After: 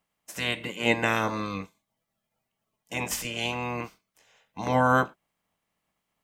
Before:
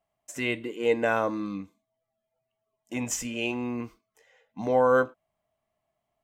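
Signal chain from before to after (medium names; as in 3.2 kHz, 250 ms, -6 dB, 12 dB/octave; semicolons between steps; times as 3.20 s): spectral peaks clipped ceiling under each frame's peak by 20 dB; peaking EQ 180 Hz +8 dB 0.35 oct; band-stop 380 Hz, Q 12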